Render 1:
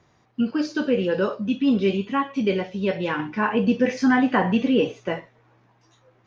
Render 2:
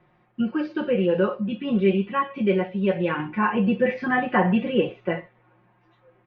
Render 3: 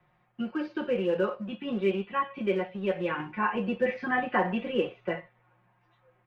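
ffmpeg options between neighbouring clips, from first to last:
-af "lowpass=f=2.9k:w=0.5412,lowpass=f=2.9k:w=1.3066,aecho=1:1:5.6:0.91,volume=-2.5dB"
-filter_complex "[0:a]acrossover=split=230|430|880[a][b][c][d];[a]acompressor=threshold=-37dB:ratio=6[e];[b]aeval=exprs='sgn(val(0))*max(abs(val(0))-0.00631,0)':c=same[f];[e][f][c][d]amix=inputs=4:normalize=0,volume=-4.5dB"

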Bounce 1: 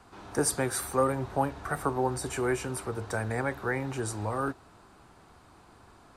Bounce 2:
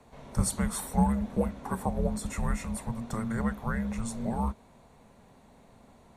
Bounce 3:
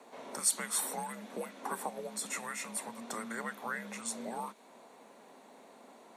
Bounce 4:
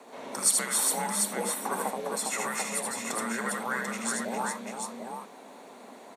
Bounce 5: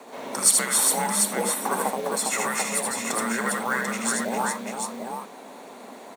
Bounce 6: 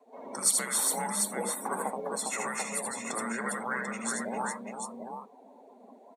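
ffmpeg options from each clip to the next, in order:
-af "afreqshift=-340,equalizer=f=200:t=o:w=0.33:g=5,equalizer=f=315:t=o:w=0.33:g=-11,equalizer=f=1.25k:t=o:w=0.33:g=-6,equalizer=f=3.15k:t=o:w=0.33:g=-5,equalizer=f=5k:t=o:w=0.33:g=-8,equalizer=f=8k:t=o:w=0.33:g=-4"
-filter_complex "[0:a]acrossover=split=1600[a][b];[a]acompressor=threshold=-37dB:ratio=6[c];[c][b]amix=inputs=2:normalize=0,highpass=f=270:w=0.5412,highpass=f=270:w=1.3066,volume=3.5dB"
-af "aecho=1:1:78|406|740:0.668|0.562|0.562,volume=5dB"
-af "acrusher=bits=5:mode=log:mix=0:aa=0.000001,volume=5.5dB"
-af "afftdn=nr=21:nf=-36,volume=-7dB"

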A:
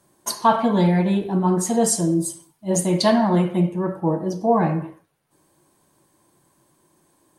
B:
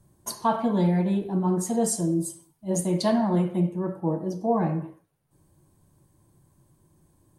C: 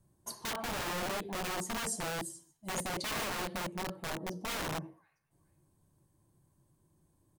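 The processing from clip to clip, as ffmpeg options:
-filter_complex "[0:a]equalizer=f=2.5k:w=0.35:g=-6,acrossover=split=130|1600[a][b][c];[a]acompressor=mode=upward:threshold=-43dB:ratio=2.5[d];[d][b][c]amix=inputs=3:normalize=0,volume=-4dB"
-filter_complex "[0:a]acrossover=split=1500[a][b];[a]aeval=exprs='(mod(13.3*val(0)+1,2)-1)/13.3':c=same[c];[b]aecho=1:1:427|854:0.178|0.0391[d];[c][d]amix=inputs=2:normalize=0,volume=-9dB"

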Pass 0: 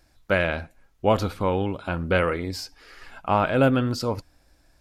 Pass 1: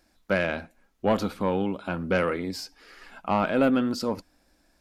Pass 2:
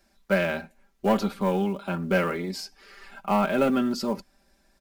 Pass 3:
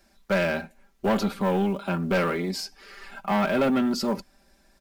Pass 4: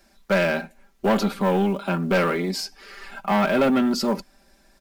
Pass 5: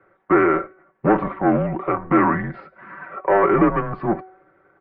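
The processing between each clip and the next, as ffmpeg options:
-filter_complex "[0:a]lowshelf=f=160:t=q:w=3:g=-6,asplit=2[a][b];[b]aeval=exprs='0.631*sin(PI/2*2.24*val(0)/0.631)':c=same,volume=-10.5dB[c];[a][c]amix=inputs=2:normalize=0,volume=-8.5dB"
-filter_complex "[0:a]aecho=1:1:5.1:0.79,acrossover=split=320|2100[a][b][c];[b]acrusher=bits=6:mode=log:mix=0:aa=0.000001[d];[a][d][c]amix=inputs=3:normalize=0,volume=-1.5dB"
-af "asoftclip=type=tanh:threshold=-21dB,volume=3.5dB"
-af "equalizer=f=86:t=o:w=0.55:g=-14,volume=3.5dB"
-af "aeval=exprs='if(lt(val(0),0),0.708*val(0),val(0))':c=same,highpass=f=440:t=q:w=0.5412,highpass=f=440:t=q:w=1.307,lowpass=f=2.1k:t=q:w=0.5176,lowpass=f=2.1k:t=q:w=0.7071,lowpass=f=2.1k:t=q:w=1.932,afreqshift=-230,bandreject=f=374.4:t=h:w=4,bandreject=f=748.8:t=h:w=4,bandreject=f=1.1232k:t=h:w=4,bandreject=f=1.4976k:t=h:w=4,bandreject=f=1.872k:t=h:w=4,bandreject=f=2.2464k:t=h:w=4,bandreject=f=2.6208k:t=h:w=4,bandreject=f=2.9952k:t=h:w=4,bandreject=f=3.3696k:t=h:w=4,bandreject=f=3.744k:t=h:w=4,bandreject=f=4.1184k:t=h:w=4,bandreject=f=4.4928k:t=h:w=4,bandreject=f=4.8672k:t=h:w=4,bandreject=f=5.2416k:t=h:w=4,bandreject=f=5.616k:t=h:w=4,bandreject=f=5.9904k:t=h:w=4,bandreject=f=6.3648k:t=h:w=4,bandreject=f=6.7392k:t=h:w=4,bandreject=f=7.1136k:t=h:w=4,bandreject=f=7.488k:t=h:w=4,bandreject=f=7.8624k:t=h:w=4,bandreject=f=8.2368k:t=h:w=4,bandreject=f=8.6112k:t=h:w=4,bandreject=f=8.9856k:t=h:w=4,bandreject=f=9.36k:t=h:w=4,bandreject=f=9.7344k:t=h:w=4,bandreject=f=10.1088k:t=h:w=4,volume=8dB"

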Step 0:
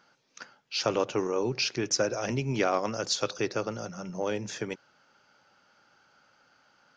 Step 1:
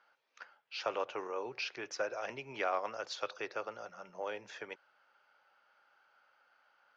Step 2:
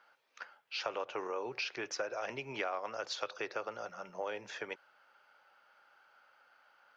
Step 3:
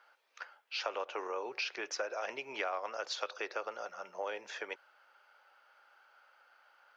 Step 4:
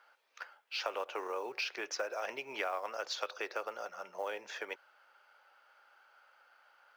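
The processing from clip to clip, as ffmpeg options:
-filter_complex "[0:a]acrossover=split=490 3500:gain=0.0891 1 0.126[a][b][c];[a][b][c]amix=inputs=3:normalize=0,volume=-4.5dB"
-af "acompressor=threshold=-38dB:ratio=4,volume=4dB"
-af "highpass=380,volume=1dB"
-af "acrusher=bits=7:mode=log:mix=0:aa=0.000001"

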